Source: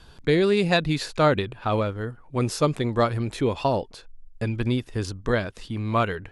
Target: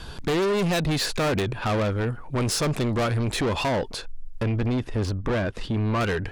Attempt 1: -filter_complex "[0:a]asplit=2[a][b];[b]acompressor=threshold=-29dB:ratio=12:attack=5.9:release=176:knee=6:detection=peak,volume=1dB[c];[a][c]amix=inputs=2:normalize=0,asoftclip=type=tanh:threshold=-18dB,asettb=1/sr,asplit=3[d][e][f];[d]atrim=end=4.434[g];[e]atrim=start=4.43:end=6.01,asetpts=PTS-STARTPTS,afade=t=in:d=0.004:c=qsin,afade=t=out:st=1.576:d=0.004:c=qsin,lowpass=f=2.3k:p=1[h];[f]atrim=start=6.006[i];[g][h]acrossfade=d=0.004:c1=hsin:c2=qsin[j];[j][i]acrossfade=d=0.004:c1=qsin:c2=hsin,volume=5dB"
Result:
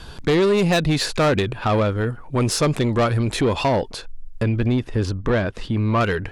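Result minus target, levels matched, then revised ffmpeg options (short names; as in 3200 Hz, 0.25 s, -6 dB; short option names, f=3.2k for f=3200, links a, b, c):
soft clip: distortion -6 dB
-filter_complex "[0:a]asplit=2[a][b];[b]acompressor=threshold=-29dB:ratio=12:attack=5.9:release=176:knee=6:detection=peak,volume=1dB[c];[a][c]amix=inputs=2:normalize=0,asoftclip=type=tanh:threshold=-26dB,asettb=1/sr,asplit=3[d][e][f];[d]atrim=end=4.434[g];[e]atrim=start=4.43:end=6.01,asetpts=PTS-STARTPTS,afade=t=in:d=0.004:c=qsin,afade=t=out:st=1.576:d=0.004:c=qsin,lowpass=f=2.3k:p=1[h];[f]atrim=start=6.006[i];[g][h]acrossfade=d=0.004:c1=hsin:c2=qsin[j];[j][i]acrossfade=d=0.004:c1=qsin:c2=hsin,volume=5dB"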